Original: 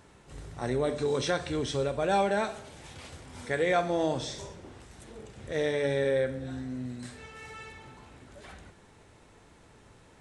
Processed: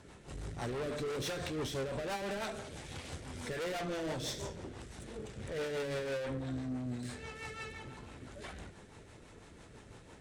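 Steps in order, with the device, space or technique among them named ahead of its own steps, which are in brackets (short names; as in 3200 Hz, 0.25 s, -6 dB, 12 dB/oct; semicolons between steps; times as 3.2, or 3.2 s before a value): overdriven rotary cabinet (tube stage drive 39 dB, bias 0.45; rotary speaker horn 6 Hz); gain +5.5 dB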